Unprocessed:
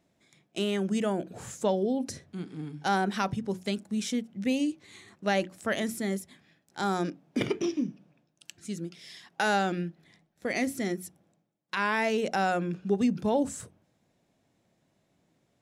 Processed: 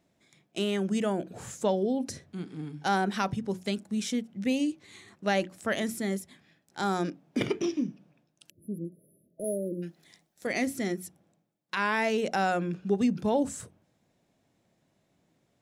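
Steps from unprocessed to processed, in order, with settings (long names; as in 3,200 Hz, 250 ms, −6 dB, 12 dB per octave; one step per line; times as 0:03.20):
0:08.49–0:09.83: time-frequency box erased 660–9,900 Hz
0:09.44–0:10.47: bass and treble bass −6 dB, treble +11 dB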